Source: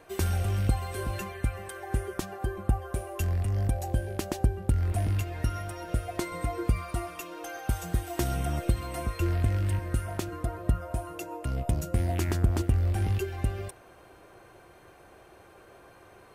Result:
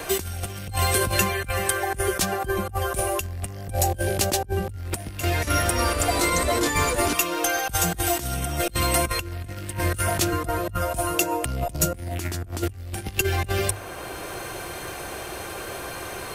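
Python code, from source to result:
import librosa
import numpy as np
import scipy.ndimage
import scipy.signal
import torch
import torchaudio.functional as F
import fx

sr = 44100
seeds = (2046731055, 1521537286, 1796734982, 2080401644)

y = fx.over_compress(x, sr, threshold_db=-33.0, ratio=-0.5)
y = fx.high_shelf(y, sr, hz=2500.0, db=10.0)
y = fx.hum_notches(y, sr, base_hz=50, count=2)
y = fx.echo_pitch(y, sr, ms=194, semitones=-3, count=2, db_per_echo=-3.0, at=(5.01, 7.13))
y = fx.band_squash(y, sr, depth_pct=40)
y = y * 10.0 ** (7.5 / 20.0)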